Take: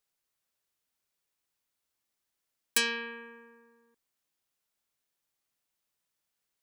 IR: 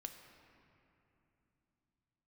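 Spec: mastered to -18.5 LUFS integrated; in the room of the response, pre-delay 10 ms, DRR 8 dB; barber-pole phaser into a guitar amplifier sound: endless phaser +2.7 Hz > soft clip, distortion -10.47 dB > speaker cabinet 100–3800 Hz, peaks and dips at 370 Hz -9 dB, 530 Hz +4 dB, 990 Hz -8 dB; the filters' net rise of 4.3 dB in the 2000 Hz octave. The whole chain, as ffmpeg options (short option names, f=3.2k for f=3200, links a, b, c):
-filter_complex "[0:a]equalizer=f=2k:t=o:g=6,asplit=2[a][b];[1:a]atrim=start_sample=2205,adelay=10[c];[b][c]afir=irnorm=-1:irlink=0,volume=-4dB[d];[a][d]amix=inputs=2:normalize=0,asplit=2[e][f];[f]afreqshift=2.7[g];[e][g]amix=inputs=2:normalize=1,asoftclip=threshold=-26.5dB,highpass=100,equalizer=f=370:t=q:w=4:g=-9,equalizer=f=530:t=q:w=4:g=4,equalizer=f=990:t=q:w=4:g=-8,lowpass=f=3.8k:w=0.5412,lowpass=f=3.8k:w=1.3066,volume=20dB"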